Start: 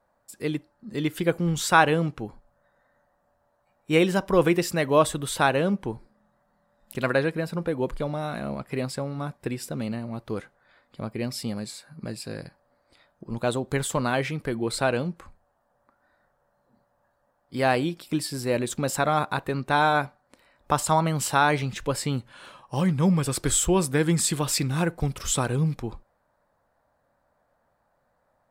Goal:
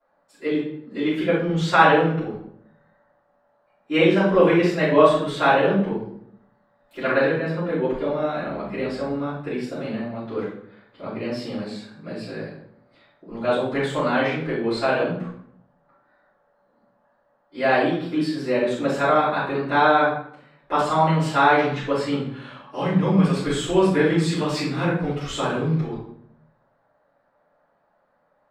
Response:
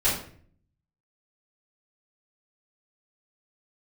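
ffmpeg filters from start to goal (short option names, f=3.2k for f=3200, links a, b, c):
-filter_complex "[0:a]asettb=1/sr,asplit=3[a][b][c];[a]atrim=end=8.474[d];[b]atrim=start=8.47:end=9.09,asetpts=PTS-STARTPTS,afade=t=in:d=0.004:c=qsin,afade=t=out:st=0.616:d=0.004:c=qsin,aeval=exprs='val(0)+0.01*(sin(2*PI*60*n/s)+sin(2*PI*2*60*n/s)/2+sin(2*PI*3*60*n/s)/3+sin(2*PI*4*60*n/s)/4+sin(2*PI*5*60*n/s)/5)':c=same[e];[c]atrim=start=9.086[f];[d][e]acrossfade=d=0.004:c1=hsin:c2=qsin[g];[g][f]acrossfade=d=0.004:c1=qsin:c2=hsin,acrossover=split=170 4700:gain=0.1 1 0.0708[h][i][j];[h][i][j]amix=inputs=3:normalize=0[k];[1:a]atrim=start_sample=2205,asetrate=32634,aresample=44100[l];[k][l]afir=irnorm=-1:irlink=0,volume=-10.5dB"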